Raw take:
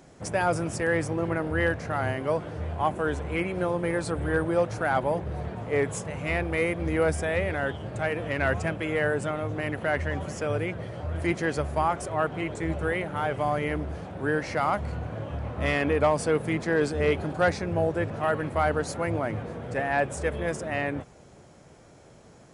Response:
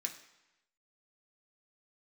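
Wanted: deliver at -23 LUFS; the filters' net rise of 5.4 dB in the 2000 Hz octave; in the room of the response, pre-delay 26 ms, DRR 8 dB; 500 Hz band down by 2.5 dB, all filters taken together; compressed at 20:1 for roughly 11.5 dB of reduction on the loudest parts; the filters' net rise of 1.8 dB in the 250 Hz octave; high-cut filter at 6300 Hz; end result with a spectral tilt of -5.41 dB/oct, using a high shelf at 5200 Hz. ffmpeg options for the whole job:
-filter_complex "[0:a]lowpass=6.3k,equalizer=f=250:t=o:g=4.5,equalizer=f=500:t=o:g=-4.5,equalizer=f=2k:t=o:g=6,highshelf=f=5.2k:g=6.5,acompressor=threshold=-29dB:ratio=20,asplit=2[a][b];[1:a]atrim=start_sample=2205,adelay=26[c];[b][c]afir=irnorm=-1:irlink=0,volume=-7dB[d];[a][d]amix=inputs=2:normalize=0,volume=11dB"

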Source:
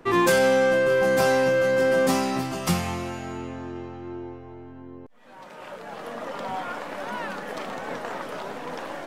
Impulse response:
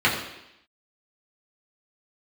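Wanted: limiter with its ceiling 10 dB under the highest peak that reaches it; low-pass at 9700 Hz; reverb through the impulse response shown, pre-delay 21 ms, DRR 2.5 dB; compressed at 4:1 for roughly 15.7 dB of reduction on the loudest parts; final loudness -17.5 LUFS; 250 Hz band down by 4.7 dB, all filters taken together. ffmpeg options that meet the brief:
-filter_complex "[0:a]lowpass=9.7k,equalizer=f=250:t=o:g=-6.5,acompressor=threshold=-38dB:ratio=4,alimiter=level_in=11dB:limit=-24dB:level=0:latency=1,volume=-11dB,asplit=2[a][b];[1:a]atrim=start_sample=2205,adelay=21[c];[b][c]afir=irnorm=-1:irlink=0,volume=-21dB[d];[a][d]amix=inputs=2:normalize=0,volume=23.5dB"

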